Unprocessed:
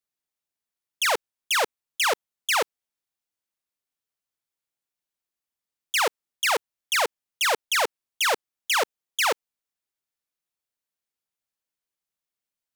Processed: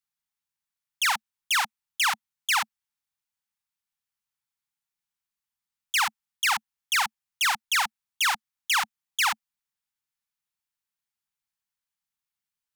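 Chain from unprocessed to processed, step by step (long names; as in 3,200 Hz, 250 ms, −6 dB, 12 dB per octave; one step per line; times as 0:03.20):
Chebyshev band-stop filter 220–800 Hz, order 4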